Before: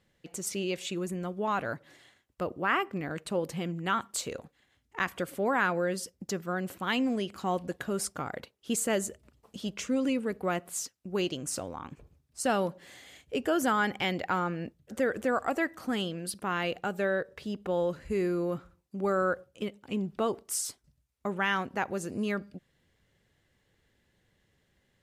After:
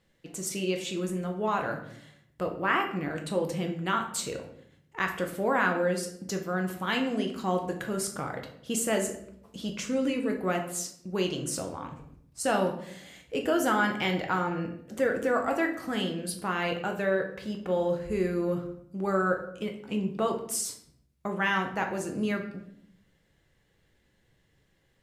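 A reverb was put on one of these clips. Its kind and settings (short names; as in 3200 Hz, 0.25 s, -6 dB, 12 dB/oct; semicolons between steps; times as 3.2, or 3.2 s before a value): shoebox room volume 130 m³, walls mixed, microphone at 0.64 m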